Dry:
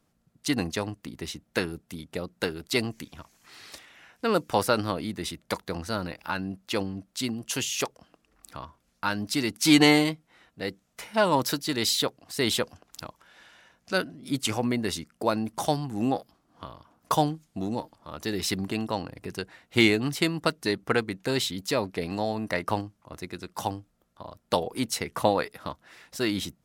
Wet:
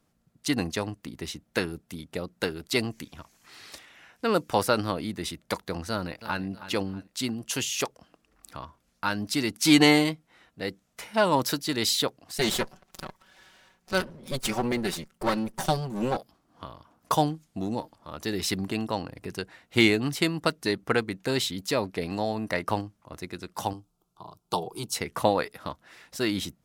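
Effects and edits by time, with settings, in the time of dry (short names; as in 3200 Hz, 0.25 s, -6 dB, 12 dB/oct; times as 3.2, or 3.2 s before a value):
5.89–6.43 echo throw 0.32 s, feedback 35%, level -13.5 dB
12.38–16.17 minimum comb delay 5.3 ms
23.73–24.95 fixed phaser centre 370 Hz, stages 8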